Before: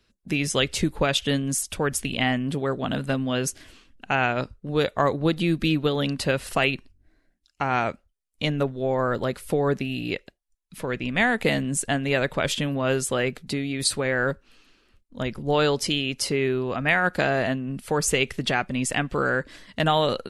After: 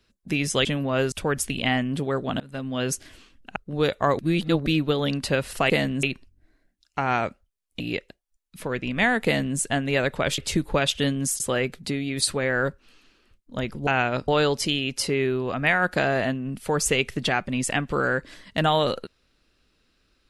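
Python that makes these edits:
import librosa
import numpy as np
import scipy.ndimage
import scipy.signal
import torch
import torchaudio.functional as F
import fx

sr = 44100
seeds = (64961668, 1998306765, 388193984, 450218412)

y = fx.edit(x, sr, fx.swap(start_s=0.65, length_s=1.02, other_s=12.56, other_length_s=0.47),
    fx.fade_in_from(start_s=2.95, length_s=0.48, floor_db=-22.5),
    fx.move(start_s=4.11, length_s=0.41, to_s=15.5),
    fx.reverse_span(start_s=5.15, length_s=0.47),
    fx.cut(start_s=8.43, length_s=1.55),
    fx.duplicate(start_s=11.43, length_s=0.33, to_s=6.66), tone=tone)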